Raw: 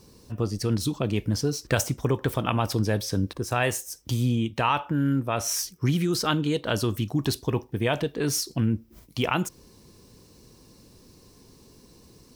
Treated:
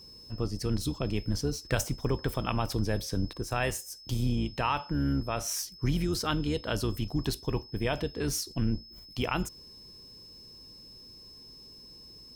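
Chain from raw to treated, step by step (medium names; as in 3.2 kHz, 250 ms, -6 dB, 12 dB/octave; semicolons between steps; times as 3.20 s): octave divider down 2 oct, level -4 dB; whistle 5.2 kHz -43 dBFS; trim -5.5 dB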